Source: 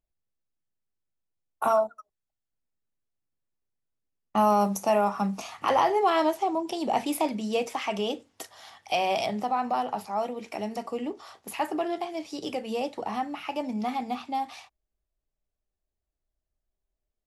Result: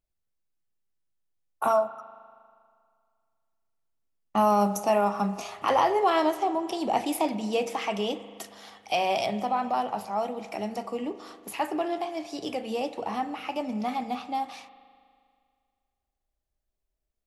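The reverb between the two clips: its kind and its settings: spring tank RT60 2.1 s, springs 39 ms, chirp 30 ms, DRR 12.5 dB

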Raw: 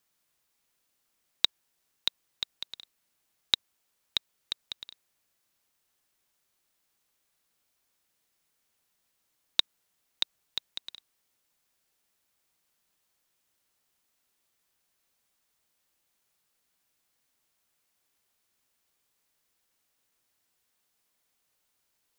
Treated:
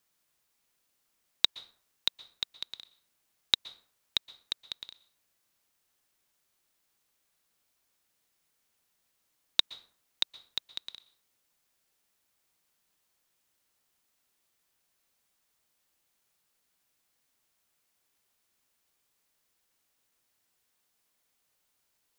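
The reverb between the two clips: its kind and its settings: plate-style reverb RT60 0.52 s, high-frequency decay 0.6×, pre-delay 0.11 s, DRR 18 dB

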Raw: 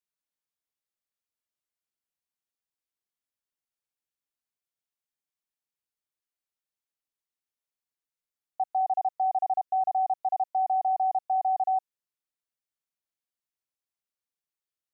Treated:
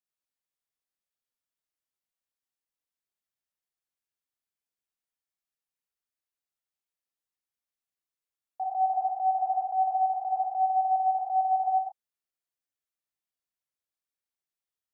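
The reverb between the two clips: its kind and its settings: non-linear reverb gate 0.14 s flat, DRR -1 dB; gain -5.5 dB

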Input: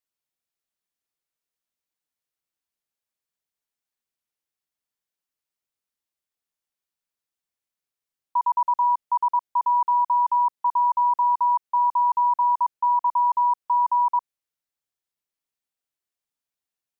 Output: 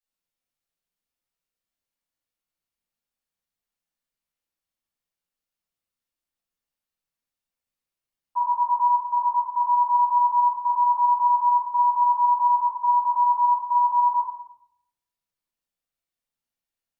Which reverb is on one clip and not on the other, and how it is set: shoebox room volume 190 m³, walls mixed, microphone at 6 m; gain -15 dB

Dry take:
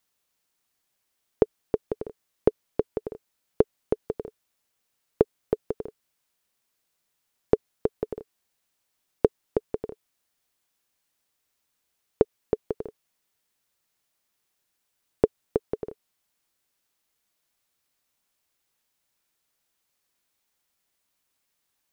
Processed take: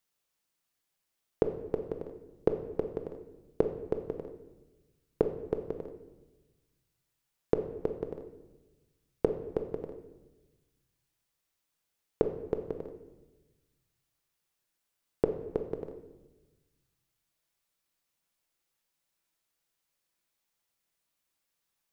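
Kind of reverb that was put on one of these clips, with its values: shoebox room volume 560 m³, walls mixed, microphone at 0.72 m; gain -6 dB

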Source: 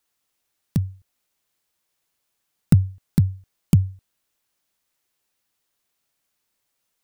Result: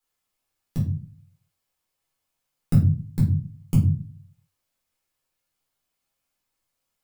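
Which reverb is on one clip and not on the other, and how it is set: shoebox room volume 240 m³, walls furnished, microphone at 4 m; gain -11 dB

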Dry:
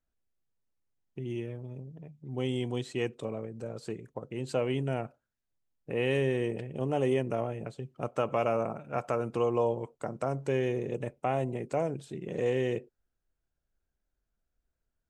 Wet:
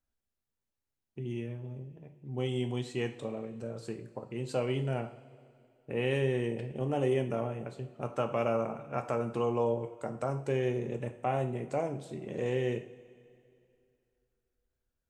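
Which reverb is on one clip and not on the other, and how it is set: two-slope reverb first 0.42 s, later 2.6 s, from -18 dB, DRR 5.5 dB; gain -2.5 dB

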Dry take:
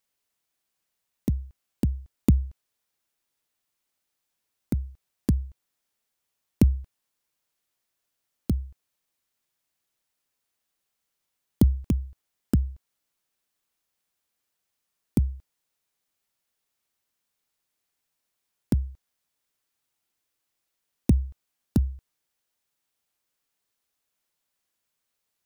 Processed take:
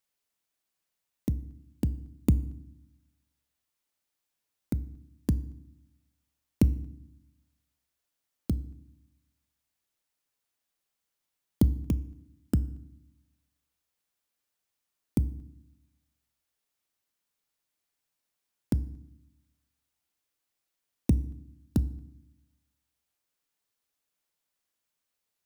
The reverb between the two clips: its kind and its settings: FDN reverb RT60 0.74 s, low-frequency decay 1.55×, high-frequency decay 0.85×, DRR 15.5 dB; gain -3.5 dB

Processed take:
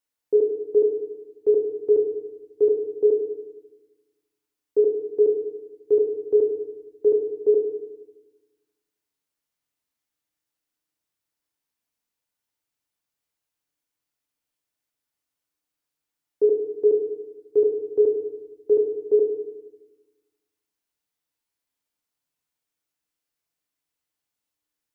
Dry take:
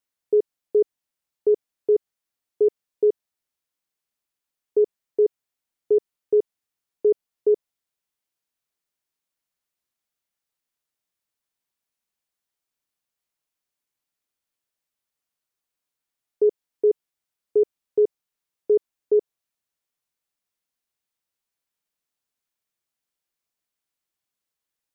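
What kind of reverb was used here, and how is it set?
FDN reverb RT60 1.1 s, low-frequency decay 1.45×, high-frequency decay 0.7×, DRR 2 dB; gain -1.5 dB

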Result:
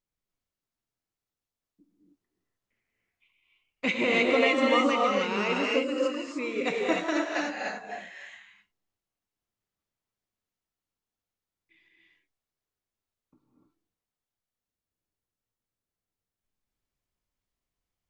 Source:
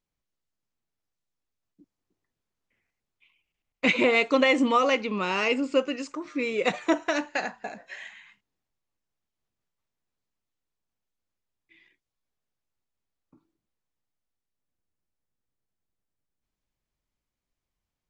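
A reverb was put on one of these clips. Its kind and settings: non-linear reverb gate 0.33 s rising, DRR -2.5 dB; gain -5.5 dB

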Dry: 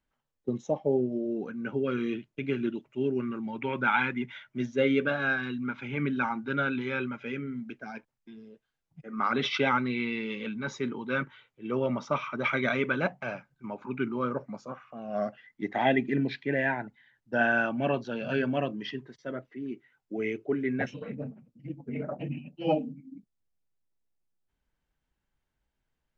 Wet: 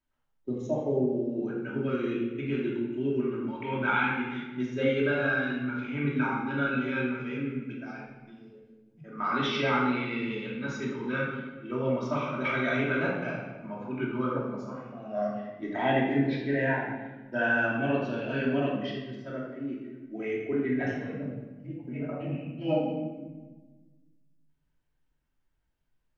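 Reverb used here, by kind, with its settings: shoebox room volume 860 m³, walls mixed, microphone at 2.8 m; gain -6.5 dB

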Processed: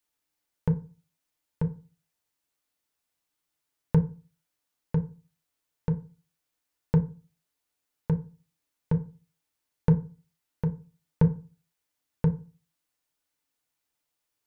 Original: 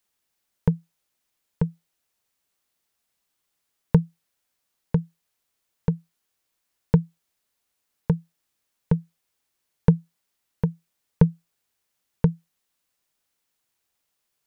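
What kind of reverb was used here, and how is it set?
FDN reverb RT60 0.34 s, low-frequency decay 1.2×, high-frequency decay 0.5×, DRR 4.5 dB; gain -6 dB

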